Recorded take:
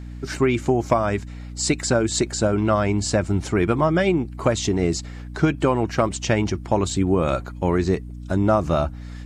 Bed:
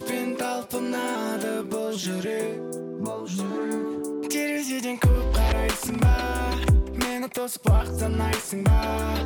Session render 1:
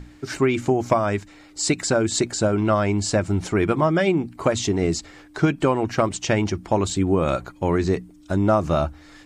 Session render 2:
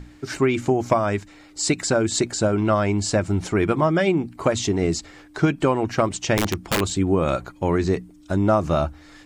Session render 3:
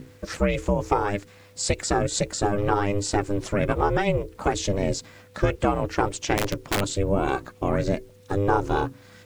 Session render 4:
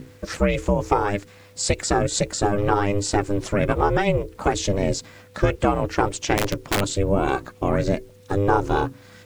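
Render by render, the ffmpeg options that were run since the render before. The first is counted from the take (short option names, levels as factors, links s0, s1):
-af "bandreject=f=60:t=h:w=6,bandreject=f=120:t=h:w=6,bandreject=f=180:t=h:w=6,bandreject=f=240:t=h:w=6"
-filter_complex "[0:a]asettb=1/sr,asplit=3[s0][s1][s2];[s0]atrim=end=6.374[s3];[s1]atrim=start=6.37:end=6.81,asetpts=PTS-STARTPTS,afade=t=in:d=0.004:c=qsin,afade=t=out:st=0.436:d=0.004:c=qsin,aeval=exprs='(mod(5.01*val(0)+1,2)-1)/5.01':c=same[s4];[s2]atrim=start=6.806[s5];[s3][s4]acrossfade=d=0.004:c1=hsin:c2=qsin[s6];[s6][s5]acrossfade=d=0.004:c1=qsin:c2=hsin"
-af "aeval=exprs='val(0)*sin(2*PI*200*n/s)':c=same,acrusher=bits=9:mix=0:aa=0.000001"
-af "volume=1.33"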